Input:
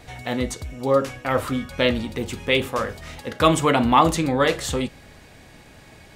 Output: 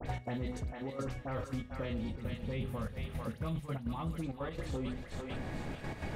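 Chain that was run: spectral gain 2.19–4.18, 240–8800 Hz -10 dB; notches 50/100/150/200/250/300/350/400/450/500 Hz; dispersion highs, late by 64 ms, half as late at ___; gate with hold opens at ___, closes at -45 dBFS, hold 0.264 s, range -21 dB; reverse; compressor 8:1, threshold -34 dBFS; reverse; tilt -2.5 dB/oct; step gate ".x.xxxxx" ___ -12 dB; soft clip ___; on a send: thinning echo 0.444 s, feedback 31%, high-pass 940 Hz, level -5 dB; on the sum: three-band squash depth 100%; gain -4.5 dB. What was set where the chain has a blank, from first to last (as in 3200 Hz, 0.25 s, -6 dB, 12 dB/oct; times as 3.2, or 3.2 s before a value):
2200 Hz, -43 dBFS, 167 bpm, -23 dBFS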